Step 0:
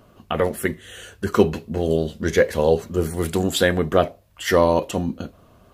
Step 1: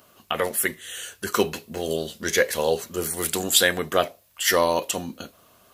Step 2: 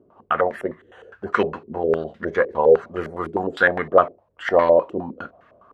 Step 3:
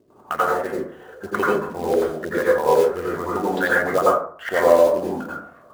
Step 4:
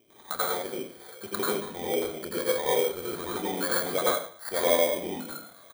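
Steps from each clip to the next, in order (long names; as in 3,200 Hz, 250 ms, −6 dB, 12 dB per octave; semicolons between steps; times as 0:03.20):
spectral tilt +3.5 dB per octave; level −1.5 dB
low-pass on a step sequencer 9.8 Hz 370–1,800 Hz
in parallel at 0 dB: downward compressor 10 to 1, threshold −23 dBFS, peak gain reduction 15.5 dB; on the sum: floating-point word with a short mantissa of 2 bits; dense smooth reverb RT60 0.51 s, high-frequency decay 0.4×, pre-delay 75 ms, DRR −5.5 dB; level −9 dB
samples in bit-reversed order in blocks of 16 samples; double-tracking delay 28 ms −12 dB; one half of a high-frequency compander encoder only; level −8.5 dB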